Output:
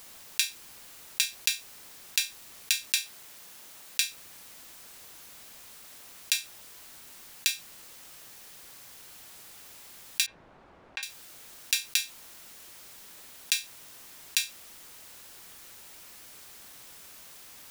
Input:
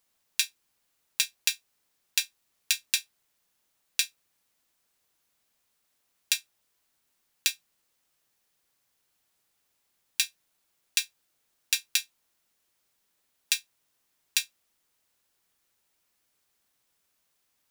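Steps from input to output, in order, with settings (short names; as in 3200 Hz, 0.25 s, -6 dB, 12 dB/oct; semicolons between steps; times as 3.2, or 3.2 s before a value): 2.87–4.05 low shelf 87 Hz -9.5 dB; 10.26–11.03 LPF 1000 Hz 12 dB/oct; fast leveller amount 50%; gain -1 dB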